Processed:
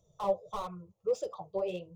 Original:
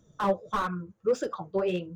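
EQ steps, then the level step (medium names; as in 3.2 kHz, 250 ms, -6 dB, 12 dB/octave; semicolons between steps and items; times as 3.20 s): peaking EQ 630 Hz +3 dB 0.77 oct; static phaser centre 650 Hz, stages 4; -4.5 dB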